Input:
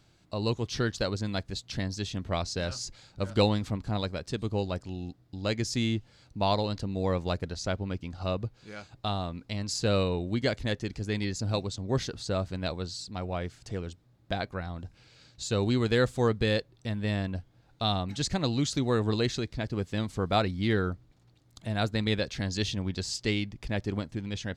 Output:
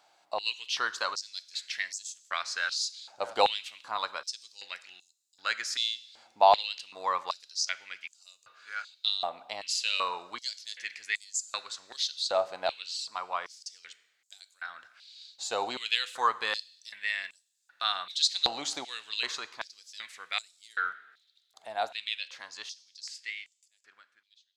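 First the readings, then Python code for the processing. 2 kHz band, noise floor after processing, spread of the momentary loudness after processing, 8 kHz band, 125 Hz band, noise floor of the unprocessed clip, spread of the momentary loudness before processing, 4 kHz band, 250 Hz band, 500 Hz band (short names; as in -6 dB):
+3.0 dB, -73 dBFS, 16 LU, +3.0 dB, under -35 dB, -63 dBFS, 10 LU, +4.0 dB, -24.0 dB, -5.5 dB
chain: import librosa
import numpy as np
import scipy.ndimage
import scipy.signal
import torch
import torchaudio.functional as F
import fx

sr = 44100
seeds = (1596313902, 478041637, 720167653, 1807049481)

y = fx.fade_out_tail(x, sr, length_s=5.47)
y = fx.rev_double_slope(y, sr, seeds[0], early_s=0.8, late_s=3.4, knee_db=-21, drr_db=14.0)
y = fx.filter_held_highpass(y, sr, hz=2.6, low_hz=770.0, high_hz=7300.0)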